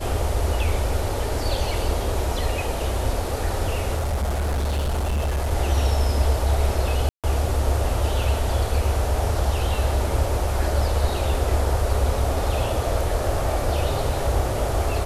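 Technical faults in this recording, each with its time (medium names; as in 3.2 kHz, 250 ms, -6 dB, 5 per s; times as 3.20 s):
3.96–5.52 s: clipped -20 dBFS
7.09–7.24 s: dropout 147 ms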